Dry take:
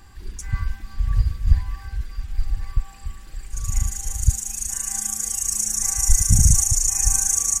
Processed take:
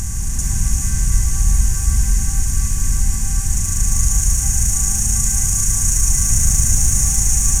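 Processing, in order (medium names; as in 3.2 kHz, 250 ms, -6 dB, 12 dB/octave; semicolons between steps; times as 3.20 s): spectral levelling over time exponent 0.2; in parallel at -3.5 dB: hard clipper -5.5 dBFS, distortion -16 dB; on the sum: gated-style reverb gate 490 ms rising, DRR -1.5 dB; trim -12 dB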